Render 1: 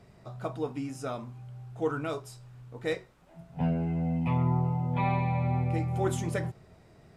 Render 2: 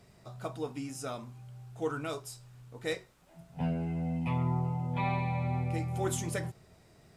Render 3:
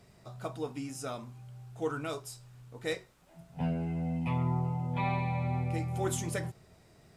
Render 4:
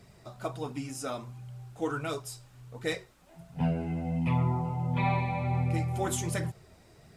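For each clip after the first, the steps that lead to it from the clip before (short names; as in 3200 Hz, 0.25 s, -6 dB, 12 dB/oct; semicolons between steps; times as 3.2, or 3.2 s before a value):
high shelf 3500 Hz +10.5 dB; gain -4 dB
nothing audible
flange 1.4 Hz, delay 0.4 ms, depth 3.6 ms, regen -41%; gain +7 dB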